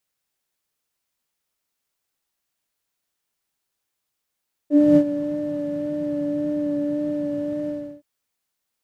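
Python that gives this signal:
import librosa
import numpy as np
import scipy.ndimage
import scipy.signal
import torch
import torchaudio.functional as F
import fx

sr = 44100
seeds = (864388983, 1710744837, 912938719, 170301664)

y = fx.sub_patch_vibrato(sr, seeds[0], note=74, wave='triangle', wave2='sine', interval_st=-12, detune_cents=3, level2_db=-6, sub_db=-21.0, noise_db=-8.0, kind='bandpass', cutoff_hz=130.0, q=3.4, env_oct=1.5, env_decay_s=0.16, env_sustain_pct=20, attack_ms=266.0, decay_s=0.07, sustain_db=-12.0, release_s=0.34, note_s=2.98, lfo_hz=1.8, vibrato_cents=18)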